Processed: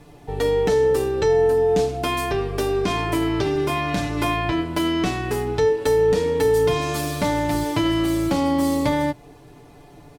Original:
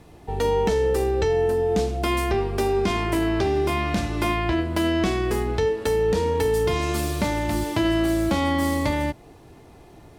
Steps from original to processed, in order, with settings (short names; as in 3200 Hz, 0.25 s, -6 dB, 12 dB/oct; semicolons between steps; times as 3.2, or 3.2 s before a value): comb 6.9 ms, depth 66%